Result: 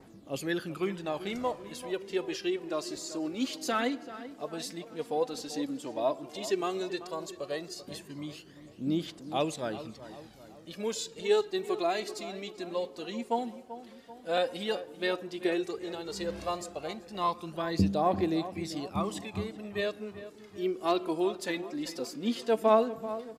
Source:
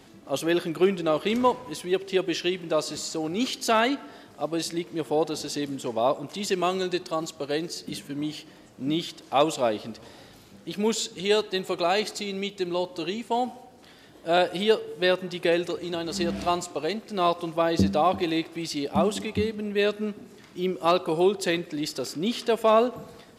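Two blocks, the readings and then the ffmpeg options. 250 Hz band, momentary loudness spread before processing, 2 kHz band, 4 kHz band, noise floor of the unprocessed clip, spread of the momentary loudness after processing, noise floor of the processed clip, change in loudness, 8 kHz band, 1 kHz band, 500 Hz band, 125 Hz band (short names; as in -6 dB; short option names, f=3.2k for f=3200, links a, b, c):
-5.5 dB, 10 LU, -7.0 dB, -8.5 dB, -51 dBFS, 14 LU, -52 dBFS, -6.5 dB, -7.0 dB, -6.5 dB, -6.0 dB, -5.5 dB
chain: -filter_complex "[0:a]aphaser=in_gain=1:out_gain=1:delay=4.7:decay=0.56:speed=0.11:type=triangular,adynamicequalizer=threshold=0.00562:dfrequency=3200:dqfactor=2.1:tfrequency=3200:tqfactor=2.1:attack=5:release=100:ratio=0.375:range=2:mode=cutabove:tftype=bell,asplit=2[a][b];[b]adelay=387,lowpass=f=1.9k:p=1,volume=-13dB,asplit=2[c][d];[d]adelay=387,lowpass=f=1.9k:p=1,volume=0.53,asplit=2[e][f];[f]adelay=387,lowpass=f=1.9k:p=1,volume=0.53,asplit=2[g][h];[h]adelay=387,lowpass=f=1.9k:p=1,volume=0.53,asplit=2[i][j];[j]adelay=387,lowpass=f=1.9k:p=1,volume=0.53[k];[a][c][e][g][i][k]amix=inputs=6:normalize=0,volume=-8.5dB"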